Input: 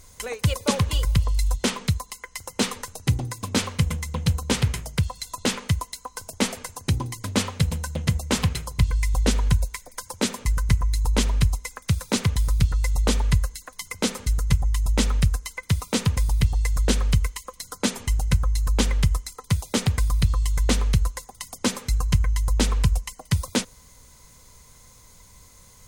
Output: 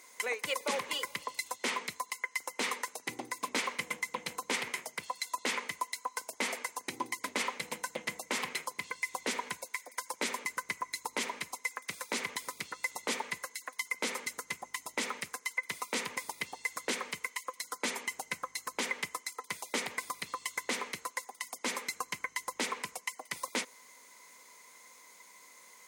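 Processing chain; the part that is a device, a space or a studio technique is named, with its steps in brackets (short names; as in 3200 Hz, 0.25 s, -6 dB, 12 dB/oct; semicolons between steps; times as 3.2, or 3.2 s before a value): laptop speaker (HPF 280 Hz 24 dB/oct; bell 980 Hz +5 dB 0.46 oct; bell 2100 Hz +11 dB 0.47 oct; limiter -16.5 dBFS, peak gain reduction 9.5 dB); gain -5 dB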